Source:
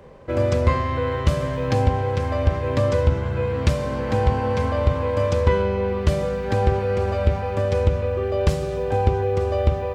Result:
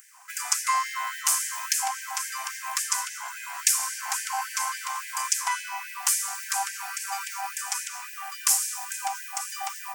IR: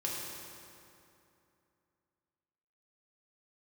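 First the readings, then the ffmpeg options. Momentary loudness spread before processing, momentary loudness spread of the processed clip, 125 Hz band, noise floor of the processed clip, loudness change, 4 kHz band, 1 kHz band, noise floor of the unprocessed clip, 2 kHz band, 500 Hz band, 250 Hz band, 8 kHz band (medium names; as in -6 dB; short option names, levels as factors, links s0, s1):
4 LU, 10 LU, under -40 dB, -40 dBFS, -5.5 dB, +5.0 dB, -3.0 dB, -27 dBFS, +1.0 dB, under -35 dB, under -40 dB, +21.0 dB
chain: -filter_complex "[0:a]asplit=2[s0][s1];[1:a]atrim=start_sample=2205,lowpass=5500[s2];[s1][s2]afir=irnorm=-1:irlink=0,volume=0.168[s3];[s0][s3]amix=inputs=2:normalize=0,aexciter=amount=11.5:drive=7.1:freq=5700,afftfilt=real='re*gte(b*sr/1024,670*pow(1600/670,0.5+0.5*sin(2*PI*3.6*pts/sr)))':imag='im*gte(b*sr/1024,670*pow(1600/670,0.5+0.5*sin(2*PI*3.6*pts/sr)))':win_size=1024:overlap=0.75"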